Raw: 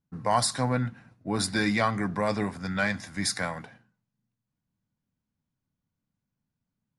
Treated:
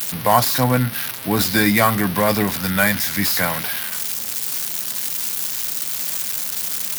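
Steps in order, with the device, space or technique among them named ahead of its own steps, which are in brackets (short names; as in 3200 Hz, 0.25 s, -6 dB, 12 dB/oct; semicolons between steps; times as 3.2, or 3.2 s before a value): budget class-D amplifier (switching dead time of 0.057 ms; switching spikes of -17.5 dBFS); gain +9 dB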